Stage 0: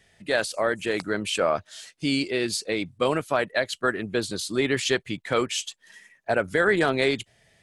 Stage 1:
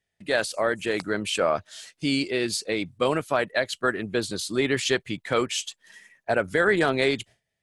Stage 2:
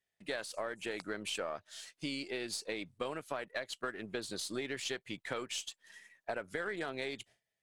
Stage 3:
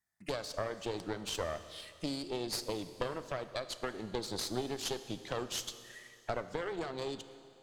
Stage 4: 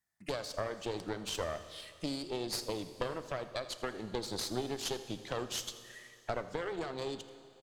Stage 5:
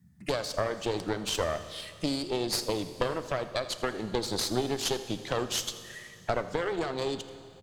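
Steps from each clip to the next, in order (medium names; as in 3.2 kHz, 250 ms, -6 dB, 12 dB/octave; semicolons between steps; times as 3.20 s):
gate with hold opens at -47 dBFS
partial rectifier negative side -3 dB; bass shelf 180 Hz -10 dB; compression, threshold -30 dBFS, peak gain reduction 11.5 dB; trim -5 dB
touch-sensitive phaser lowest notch 490 Hz, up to 2.1 kHz, full sweep at -40 dBFS; Chebyshev shaper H 4 -9 dB, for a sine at -23.5 dBFS; Schroeder reverb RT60 2.4 s, combs from 25 ms, DRR 11.5 dB; trim +3.5 dB
delay 83 ms -18 dB
band noise 71–200 Hz -66 dBFS; trim +7 dB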